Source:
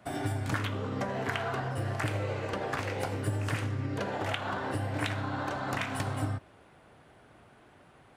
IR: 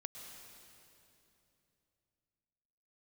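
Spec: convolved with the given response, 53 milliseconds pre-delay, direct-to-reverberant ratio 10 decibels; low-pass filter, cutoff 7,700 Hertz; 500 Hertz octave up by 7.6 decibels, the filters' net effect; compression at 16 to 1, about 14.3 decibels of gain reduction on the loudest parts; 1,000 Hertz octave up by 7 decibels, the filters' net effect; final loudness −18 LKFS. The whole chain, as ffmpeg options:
-filter_complex "[0:a]lowpass=7700,equalizer=frequency=500:width_type=o:gain=7.5,equalizer=frequency=1000:width_type=o:gain=6.5,acompressor=threshold=-37dB:ratio=16,asplit=2[link_01][link_02];[1:a]atrim=start_sample=2205,adelay=53[link_03];[link_02][link_03]afir=irnorm=-1:irlink=0,volume=-7dB[link_04];[link_01][link_04]amix=inputs=2:normalize=0,volume=23.5dB"

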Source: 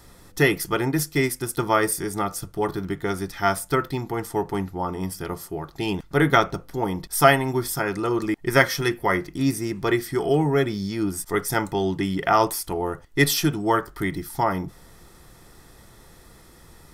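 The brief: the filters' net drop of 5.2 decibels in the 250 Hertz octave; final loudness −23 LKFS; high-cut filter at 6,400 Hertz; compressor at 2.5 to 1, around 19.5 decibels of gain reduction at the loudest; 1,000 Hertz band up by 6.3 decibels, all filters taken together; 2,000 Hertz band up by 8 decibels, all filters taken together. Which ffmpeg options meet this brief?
ffmpeg -i in.wav -af "lowpass=6400,equalizer=frequency=250:width_type=o:gain=-8.5,equalizer=frequency=1000:width_type=o:gain=6.5,equalizer=frequency=2000:width_type=o:gain=7.5,acompressor=threshold=-36dB:ratio=2.5,volume=11.5dB" out.wav

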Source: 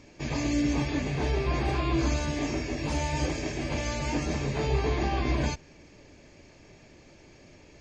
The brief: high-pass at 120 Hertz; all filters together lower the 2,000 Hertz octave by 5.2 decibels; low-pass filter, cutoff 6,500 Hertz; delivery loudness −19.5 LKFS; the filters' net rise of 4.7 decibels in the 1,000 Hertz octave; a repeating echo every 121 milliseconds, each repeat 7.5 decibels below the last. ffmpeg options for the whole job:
ffmpeg -i in.wav -af "highpass=120,lowpass=6500,equalizer=frequency=1000:width_type=o:gain=7.5,equalizer=frequency=2000:width_type=o:gain=-8.5,aecho=1:1:121|242|363|484|605:0.422|0.177|0.0744|0.0312|0.0131,volume=9.5dB" out.wav

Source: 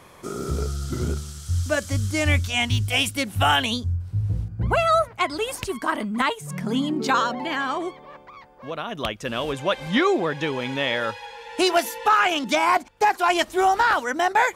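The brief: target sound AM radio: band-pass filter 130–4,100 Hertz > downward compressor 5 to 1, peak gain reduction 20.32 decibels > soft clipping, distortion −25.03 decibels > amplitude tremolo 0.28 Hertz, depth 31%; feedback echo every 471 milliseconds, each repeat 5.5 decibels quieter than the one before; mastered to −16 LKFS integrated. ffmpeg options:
ffmpeg -i in.wav -af "highpass=130,lowpass=4100,aecho=1:1:471|942|1413|1884|2355|2826|3297:0.531|0.281|0.149|0.079|0.0419|0.0222|0.0118,acompressor=threshold=-36dB:ratio=5,asoftclip=threshold=-25.5dB,tremolo=f=0.28:d=0.31,volume=23.5dB" out.wav

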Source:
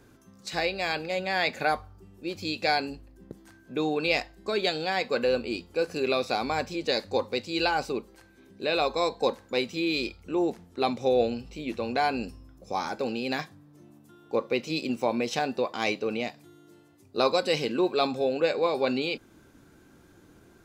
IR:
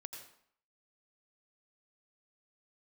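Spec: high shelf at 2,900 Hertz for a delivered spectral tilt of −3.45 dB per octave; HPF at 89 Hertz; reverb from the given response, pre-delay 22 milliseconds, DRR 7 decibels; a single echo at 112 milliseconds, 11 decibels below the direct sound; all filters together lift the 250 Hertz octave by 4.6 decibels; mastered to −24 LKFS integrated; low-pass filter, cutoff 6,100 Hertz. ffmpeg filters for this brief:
-filter_complex "[0:a]highpass=89,lowpass=6100,equalizer=frequency=250:width_type=o:gain=6,highshelf=frequency=2900:gain=-5,aecho=1:1:112:0.282,asplit=2[link_01][link_02];[1:a]atrim=start_sample=2205,adelay=22[link_03];[link_02][link_03]afir=irnorm=-1:irlink=0,volume=-3dB[link_04];[link_01][link_04]amix=inputs=2:normalize=0,volume=2dB"

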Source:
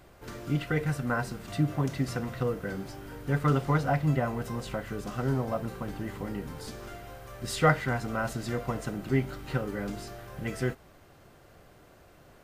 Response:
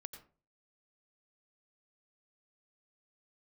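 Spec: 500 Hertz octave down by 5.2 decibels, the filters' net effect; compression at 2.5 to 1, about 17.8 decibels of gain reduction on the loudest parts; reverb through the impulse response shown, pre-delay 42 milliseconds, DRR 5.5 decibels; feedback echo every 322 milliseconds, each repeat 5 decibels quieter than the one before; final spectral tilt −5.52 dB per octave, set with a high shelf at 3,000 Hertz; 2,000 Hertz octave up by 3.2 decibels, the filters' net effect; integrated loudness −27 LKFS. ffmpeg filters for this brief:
-filter_complex "[0:a]equalizer=frequency=500:width_type=o:gain=-6.5,equalizer=frequency=2000:width_type=o:gain=7,highshelf=frequency=3000:gain=-7,acompressor=threshold=-45dB:ratio=2.5,aecho=1:1:322|644|966|1288|1610|1932|2254:0.562|0.315|0.176|0.0988|0.0553|0.031|0.0173,asplit=2[link_01][link_02];[1:a]atrim=start_sample=2205,adelay=42[link_03];[link_02][link_03]afir=irnorm=-1:irlink=0,volume=-1dB[link_04];[link_01][link_04]amix=inputs=2:normalize=0,volume=14.5dB"

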